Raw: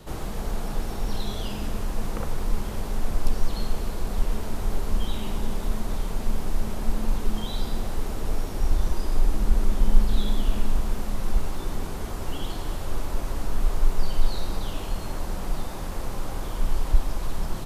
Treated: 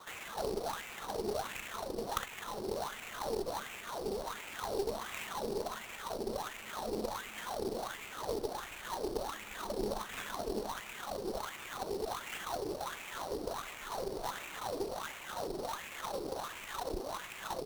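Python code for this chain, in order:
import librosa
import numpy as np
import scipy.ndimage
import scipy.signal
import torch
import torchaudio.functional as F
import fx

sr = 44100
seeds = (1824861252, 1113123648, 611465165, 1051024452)

y = fx.dereverb_blind(x, sr, rt60_s=0.61)
y = fx.wah_lfo(y, sr, hz=1.4, low_hz=390.0, high_hz=2500.0, q=5.5)
y = fx.sample_hold(y, sr, seeds[0], rate_hz=5000.0, jitter_pct=20)
y = fx.cheby_harmonics(y, sr, harmonics=(4,), levels_db=(-16,), full_scale_db=-31.5)
y = y * 10.0 ** (10.5 / 20.0)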